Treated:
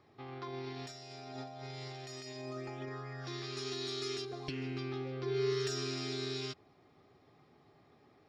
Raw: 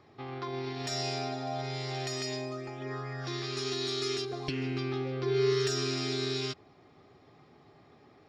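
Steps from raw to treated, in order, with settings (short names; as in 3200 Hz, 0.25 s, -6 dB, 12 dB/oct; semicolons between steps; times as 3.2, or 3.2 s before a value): 0.79–2.89 negative-ratio compressor -38 dBFS, ratio -0.5; gain -6 dB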